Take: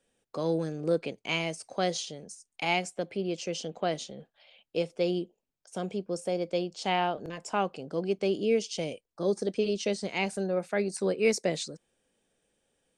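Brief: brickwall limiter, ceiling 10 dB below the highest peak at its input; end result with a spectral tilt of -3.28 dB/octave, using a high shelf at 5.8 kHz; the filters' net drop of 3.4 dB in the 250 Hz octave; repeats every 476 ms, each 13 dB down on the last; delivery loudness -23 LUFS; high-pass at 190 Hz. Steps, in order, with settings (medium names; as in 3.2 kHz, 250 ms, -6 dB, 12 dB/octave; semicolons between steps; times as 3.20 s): high-pass 190 Hz; peaking EQ 250 Hz -3 dB; treble shelf 5.8 kHz +5 dB; peak limiter -23.5 dBFS; feedback delay 476 ms, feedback 22%, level -13 dB; trim +12 dB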